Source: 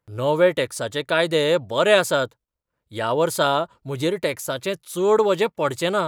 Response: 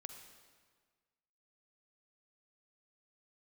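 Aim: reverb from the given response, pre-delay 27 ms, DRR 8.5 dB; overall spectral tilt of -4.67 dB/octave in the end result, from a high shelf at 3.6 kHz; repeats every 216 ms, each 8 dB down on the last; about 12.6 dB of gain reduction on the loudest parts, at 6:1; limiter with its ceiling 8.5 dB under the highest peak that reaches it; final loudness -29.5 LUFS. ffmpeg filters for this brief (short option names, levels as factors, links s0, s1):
-filter_complex "[0:a]highshelf=f=3600:g=-5.5,acompressor=threshold=0.0501:ratio=6,alimiter=limit=0.0631:level=0:latency=1,aecho=1:1:216|432|648|864|1080:0.398|0.159|0.0637|0.0255|0.0102,asplit=2[s0][s1];[1:a]atrim=start_sample=2205,adelay=27[s2];[s1][s2]afir=irnorm=-1:irlink=0,volume=0.631[s3];[s0][s3]amix=inputs=2:normalize=0,volume=1.41"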